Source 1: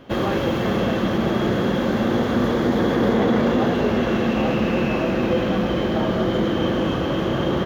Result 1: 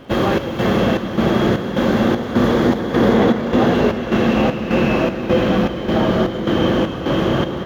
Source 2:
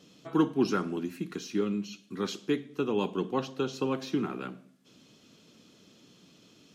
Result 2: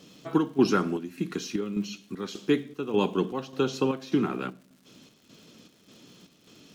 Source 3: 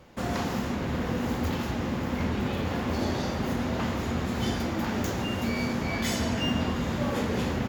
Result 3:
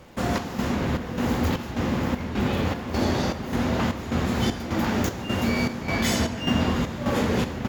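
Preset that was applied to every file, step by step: chopper 1.7 Hz, depth 60%, duty 65%; crackle 280/s -54 dBFS; gain +5 dB

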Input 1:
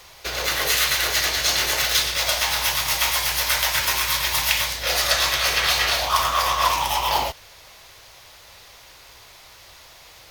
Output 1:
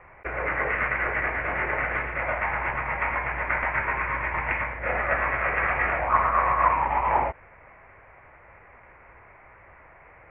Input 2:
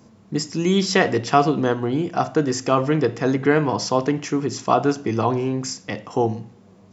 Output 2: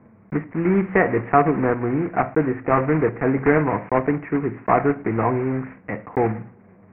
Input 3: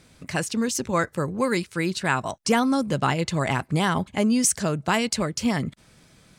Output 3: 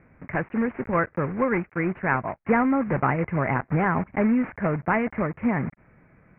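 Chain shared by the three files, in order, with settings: block floating point 3-bit; steep low-pass 2300 Hz 72 dB/oct

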